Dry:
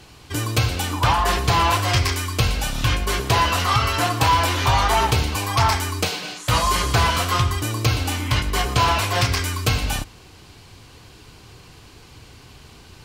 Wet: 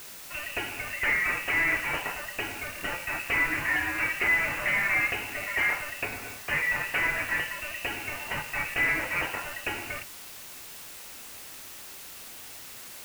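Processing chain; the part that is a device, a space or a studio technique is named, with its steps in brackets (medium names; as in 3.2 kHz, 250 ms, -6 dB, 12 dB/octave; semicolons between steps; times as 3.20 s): scrambled radio voice (band-pass 310–3200 Hz; frequency inversion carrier 3 kHz; white noise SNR 13 dB); trim -6 dB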